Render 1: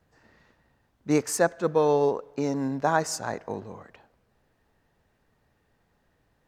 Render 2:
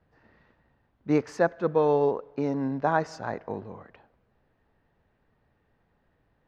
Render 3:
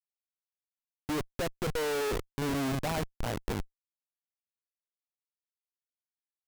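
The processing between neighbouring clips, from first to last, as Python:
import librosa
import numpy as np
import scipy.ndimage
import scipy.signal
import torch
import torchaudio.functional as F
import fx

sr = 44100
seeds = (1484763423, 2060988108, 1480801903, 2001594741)

y1 = fx.air_absorb(x, sr, metres=240.0)
y2 = fx.schmitt(y1, sr, flips_db=-31.5)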